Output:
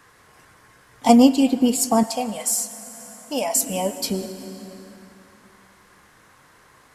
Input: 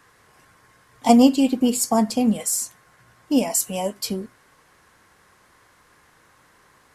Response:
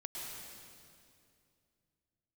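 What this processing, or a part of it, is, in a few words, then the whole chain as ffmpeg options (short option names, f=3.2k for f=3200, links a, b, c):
compressed reverb return: -filter_complex "[0:a]asplit=2[a][b];[1:a]atrim=start_sample=2205[c];[b][c]afir=irnorm=-1:irlink=0,acompressor=threshold=-27dB:ratio=4,volume=-4dB[d];[a][d]amix=inputs=2:normalize=0,asettb=1/sr,asplit=3[e][f][g];[e]atrim=end=2.034[h];[f]atrim=start=2.03:end=3.56,asetpts=PTS-STARTPTS,afade=t=in:d=0.004:c=qsin,afade=t=out:st=1.526:d=0.004:c=qsin,lowshelf=f=460:t=q:w=1.5:g=-10[i];[g]atrim=start=3.556[j];[h][i]acrossfade=d=0.004:c1=hsin:c2=qsin[k];[k][j]acrossfade=d=0.004:c1=qsin:c2=hsin"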